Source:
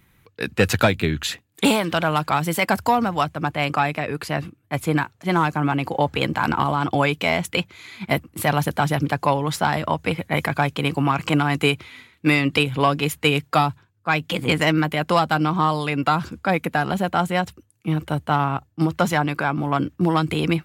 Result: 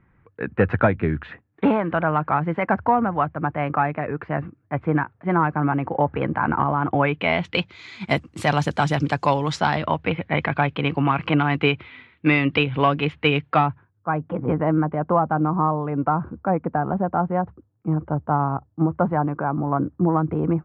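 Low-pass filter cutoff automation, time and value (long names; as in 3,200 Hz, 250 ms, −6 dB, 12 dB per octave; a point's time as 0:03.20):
low-pass filter 24 dB per octave
0:06.92 1,800 Hz
0:07.40 3,700 Hz
0:08.05 7,200 Hz
0:09.48 7,200 Hz
0:10.00 3,100 Hz
0:13.47 3,100 Hz
0:14.14 1,200 Hz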